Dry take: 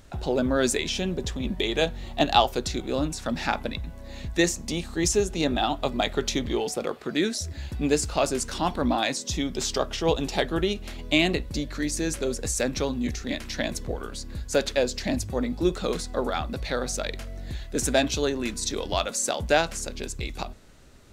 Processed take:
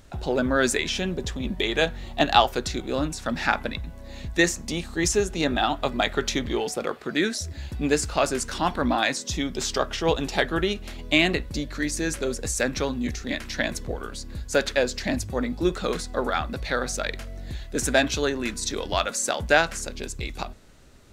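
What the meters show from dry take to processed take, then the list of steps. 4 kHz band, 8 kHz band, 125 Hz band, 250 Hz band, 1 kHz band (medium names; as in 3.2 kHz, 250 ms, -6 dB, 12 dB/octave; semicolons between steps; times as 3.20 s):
+1.0 dB, 0.0 dB, 0.0 dB, 0.0 dB, +2.0 dB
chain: dynamic bell 1.6 kHz, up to +7 dB, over -42 dBFS, Q 1.3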